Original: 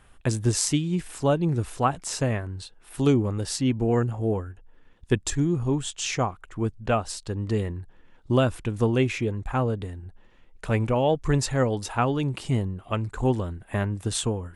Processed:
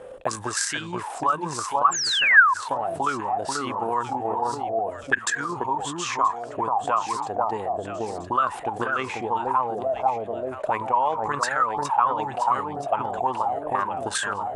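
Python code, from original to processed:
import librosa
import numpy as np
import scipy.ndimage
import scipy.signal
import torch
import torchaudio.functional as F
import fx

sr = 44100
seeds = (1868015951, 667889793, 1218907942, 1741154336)

p1 = fx.peak_eq(x, sr, hz=9100.0, db=15.0, octaves=2.0)
p2 = p1 + fx.echo_alternate(p1, sr, ms=489, hz=1300.0, feedback_pct=58, wet_db=-2.5, dry=0)
p3 = fx.transient(p2, sr, attack_db=8, sustain_db=2)
p4 = fx.level_steps(p3, sr, step_db=11)
p5 = p3 + F.gain(torch.from_numpy(p4), 1.0).numpy()
p6 = fx.spec_paint(p5, sr, seeds[0], shape='fall', start_s=1.91, length_s=0.63, low_hz=960.0, high_hz=7700.0, level_db=-7.0)
p7 = fx.auto_wah(p6, sr, base_hz=510.0, top_hz=1600.0, q=17.0, full_db=-6.0, direction='up')
y = fx.env_flatten(p7, sr, amount_pct=50)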